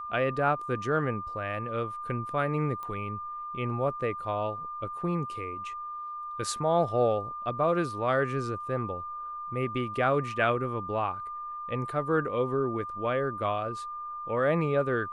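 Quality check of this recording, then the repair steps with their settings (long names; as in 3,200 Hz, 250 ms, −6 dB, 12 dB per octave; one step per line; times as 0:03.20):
whistle 1,200 Hz −35 dBFS
0:02.83: click −26 dBFS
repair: click removal
notch filter 1,200 Hz, Q 30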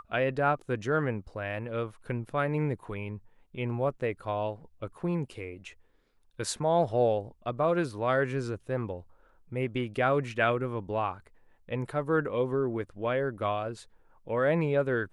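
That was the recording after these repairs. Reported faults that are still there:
none of them is left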